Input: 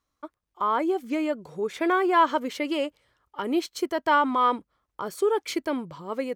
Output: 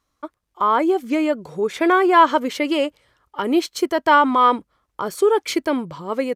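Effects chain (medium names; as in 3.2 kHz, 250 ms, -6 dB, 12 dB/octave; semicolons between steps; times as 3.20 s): resampled via 32 kHz; trim +7 dB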